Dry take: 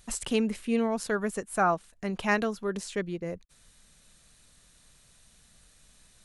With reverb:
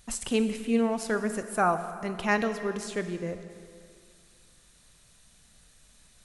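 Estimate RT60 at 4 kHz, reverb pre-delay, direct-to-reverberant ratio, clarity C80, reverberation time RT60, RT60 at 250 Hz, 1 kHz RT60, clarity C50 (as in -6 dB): 2.1 s, 7 ms, 9.0 dB, 11.0 dB, 2.3 s, 2.3 s, 2.3 s, 10.0 dB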